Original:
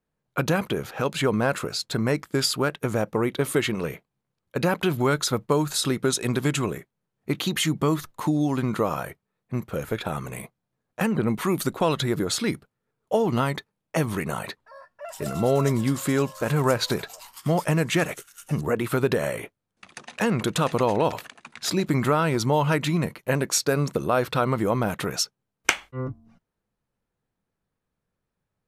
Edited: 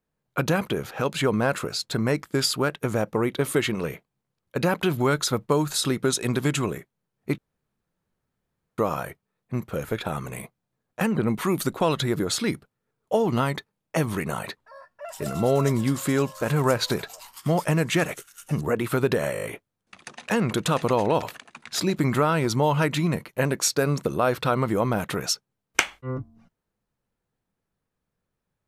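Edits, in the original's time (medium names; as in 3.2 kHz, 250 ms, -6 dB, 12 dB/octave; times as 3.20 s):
7.38–8.78 s: room tone
19.33 s: stutter 0.02 s, 6 plays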